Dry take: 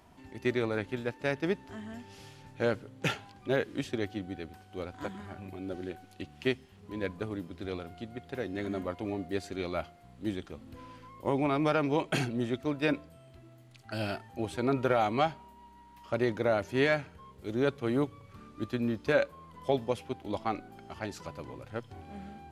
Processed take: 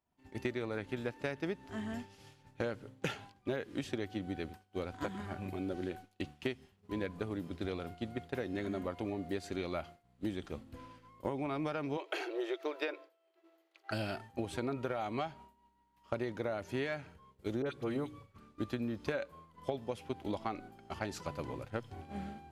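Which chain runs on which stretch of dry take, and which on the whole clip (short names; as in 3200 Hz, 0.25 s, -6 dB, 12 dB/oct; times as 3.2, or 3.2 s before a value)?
11.97–13.91 brick-wall FIR high-pass 310 Hz + bell 8700 Hz -11.5 dB 0.85 oct + three-band squash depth 40%
17.62–18.4 notches 60/120/180/240/300/360 Hz + dispersion highs, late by 44 ms, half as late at 1500 Hz
whole clip: expander -41 dBFS; compressor 10:1, threshold -37 dBFS; gain +4 dB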